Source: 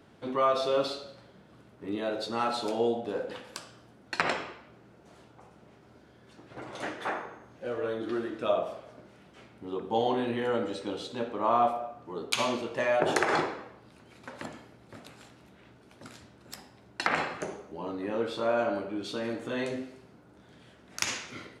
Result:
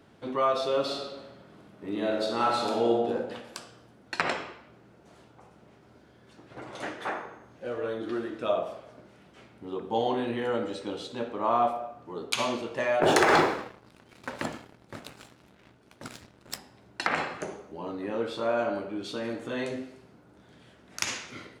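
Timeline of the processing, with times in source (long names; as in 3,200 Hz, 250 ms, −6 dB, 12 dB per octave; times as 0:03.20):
0:00.81–0:03.01: thrown reverb, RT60 1.2 s, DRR 0 dB
0:13.03–0:16.58: leveller curve on the samples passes 2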